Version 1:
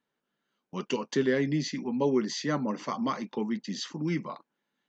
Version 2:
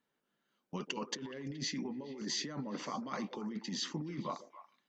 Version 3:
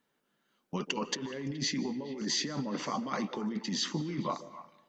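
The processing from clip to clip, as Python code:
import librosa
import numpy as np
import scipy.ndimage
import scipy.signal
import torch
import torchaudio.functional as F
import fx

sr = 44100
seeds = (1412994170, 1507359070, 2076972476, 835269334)

y1 = fx.over_compress(x, sr, threshold_db=-35.0, ratio=-1.0)
y1 = fx.echo_stepped(y1, sr, ms=141, hz=390.0, octaves=1.4, feedback_pct=70, wet_db=-9.5)
y1 = y1 * librosa.db_to_amplitude(-5.5)
y2 = fx.rev_freeverb(y1, sr, rt60_s=1.1, hf_ratio=0.65, predelay_ms=115, drr_db=18.0)
y2 = y2 * librosa.db_to_amplitude(5.5)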